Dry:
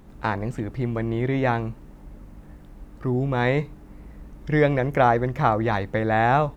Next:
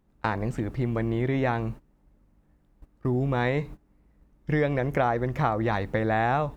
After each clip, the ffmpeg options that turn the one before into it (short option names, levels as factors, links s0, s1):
-af "agate=range=0.112:threshold=0.0158:ratio=16:detection=peak,acompressor=threshold=0.0794:ratio=3"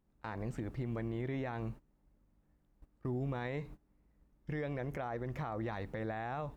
-af "alimiter=limit=0.0891:level=0:latency=1:release=77,volume=0.355"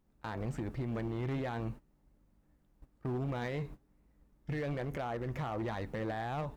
-af "flanger=delay=3:depth=5.3:regen=81:speed=1.2:shape=triangular,asoftclip=type=hard:threshold=0.0112,volume=2.37"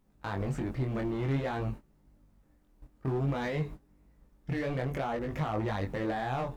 -af "flanger=delay=19:depth=4.4:speed=0.54,volume=2.37"